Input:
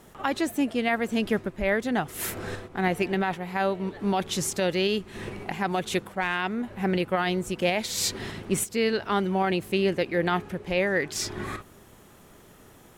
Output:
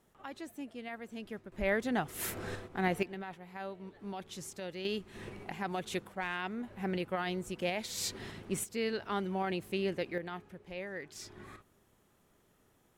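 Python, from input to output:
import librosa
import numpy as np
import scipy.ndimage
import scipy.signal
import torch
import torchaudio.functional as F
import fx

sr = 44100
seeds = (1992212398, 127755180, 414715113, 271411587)

y = fx.gain(x, sr, db=fx.steps((0.0, -18.0), (1.52, -6.0), (3.03, -16.5), (4.85, -9.5), (10.18, -17.0)))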